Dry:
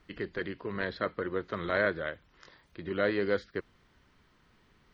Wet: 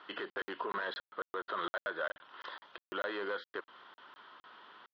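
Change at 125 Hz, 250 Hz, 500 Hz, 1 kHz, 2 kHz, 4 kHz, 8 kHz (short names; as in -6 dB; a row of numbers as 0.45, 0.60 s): -22.0 dB, -11.5 dB, -9.0 dB, 0.0 dB, -5.0 dB, 0.0 dB, n/a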